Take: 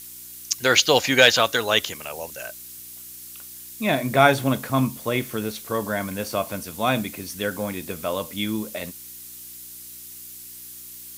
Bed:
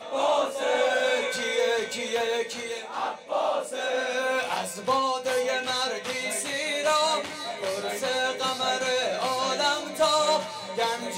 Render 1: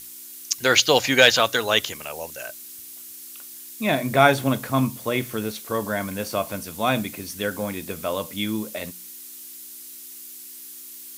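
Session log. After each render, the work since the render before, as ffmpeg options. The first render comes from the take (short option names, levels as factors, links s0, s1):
-af "bandreject=f=60:t=h:w=4,bandreject=f=120:t=h:w=4,bandreject=f=180:t=h:w=4"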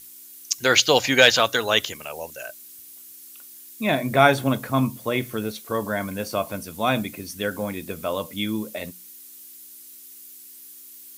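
-af "afftdn=nr=6:nf=-41"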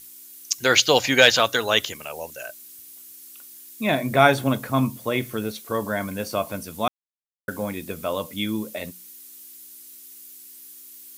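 -filter_complex "[0:a]asplit=3[s0][s1][s2];[s0]atrim=end=6.88,asetpts=PTS-STARTPTS,afade=t=out:st=6.876:d=0.004:c=hsin[s3];[s1]atrim=start=6.88:end=7.48,asetpts=PTS-STARTPTS,volume=0[s4];[s2]atrim=start=7.48,asetpts=PTS-STARTPTS,afade=t=in:d=0.004:c=hsin[s5];[s3][s4][s5]concat=n=3:v=0:a=1"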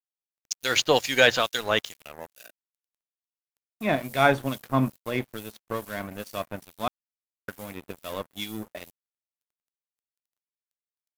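-filter_complex "[0:a]aeval=exprs='sgn(val(0))*max(abs(val(0))-0.0224,0)':c=same,acrossover=split=2400[s0][s1];[s0]aeval=exprs='val(0)*(1-0.7/2+0.7/2*cos(2*PI*2.3*n/s))':c=same[s2];[s1]aeval=exprs='val(0)*(1-0.7/2-0.7/2*cos(2*PI*2.3*n/s))':c=same[s3];[s2][s3]amix=inputs=2:normalize=0"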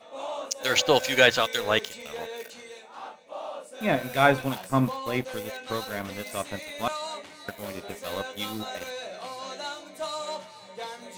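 -filter_complex "[1:a]volume=0.282[s0];[0:a][s0]amix=inputs=2:normalize=0"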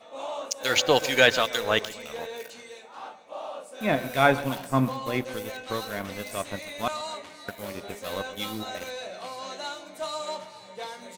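-filter_complex "[0:a]asplit=2[s0][s1];[s1]adelay=132,lowpass=f=2000:p=1,volume=0.158,asplit=2[s2][s3];[s3]adelay=132,lowpass=f=2000:p=1,volume=0.52,asplit=2[s4][s5];[s5]adelay=132,lowpass=f=2000:p=1,volume=0.52,asplit=2[s6][s7];[s7]adelay=132,lowpass=f=2000:p=1,volume=0.52,asplit=2[s8][s9];[s9]adelay=132,lowpass=f=2000:p=1,volume=0.52[s10];[s0][s2][s4][s6][s8][s10]amix=inputs=6:normalize=0"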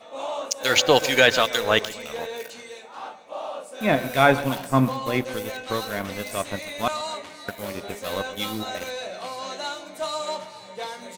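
-af "volume=1.58,alimiter=limit=0.708:level=0:latency=1"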